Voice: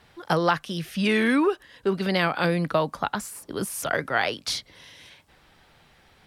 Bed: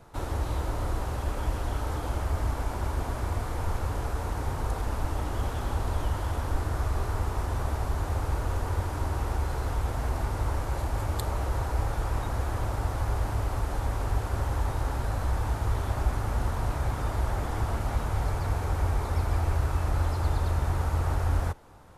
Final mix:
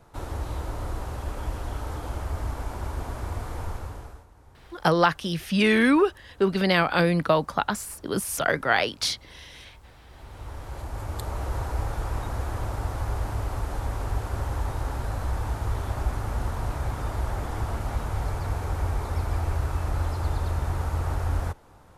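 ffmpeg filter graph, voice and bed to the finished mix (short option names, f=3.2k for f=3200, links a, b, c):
-filter_complex "[0:a]adelay=4550,volume=2dB[a];[1:a]volume=20.5dB,afade=t=out:st=3.59:d=0.67:silence=0.0891251,afade=t=in:st=10.08:d=1.46:silence=0.0749894[b];[a][b]amix=inputs=2:normalize=0"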